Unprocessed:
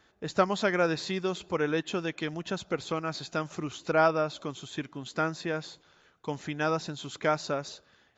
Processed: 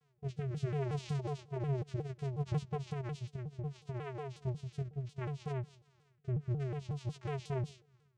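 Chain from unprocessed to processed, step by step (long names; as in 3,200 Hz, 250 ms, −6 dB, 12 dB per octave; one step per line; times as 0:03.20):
0:05.50–0:06.54: treble cut that deepens with the level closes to 1,500 Hz, closed at −30.5 dBFS
parametric band 890 Hz −6.5 dB 2 octaves
brickwall limiter −25.5 dBFS, peak gain reduction 10.5 dB
0:03.26–0:04.71: downward compressor, threshold −36 dBFS, peak gain reduction 6.5 dB
multi-voice chorus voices 6, 0.52 Hz, delay 15 ms, depth 2.2 ms
channel vocoder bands 4, square 135 Hz
rotating-speaker cabinet horn 0.65 Hz
pitch modulation by a square or saw wave saw down 5.5 Hz, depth 250 cents
level +4.5 dB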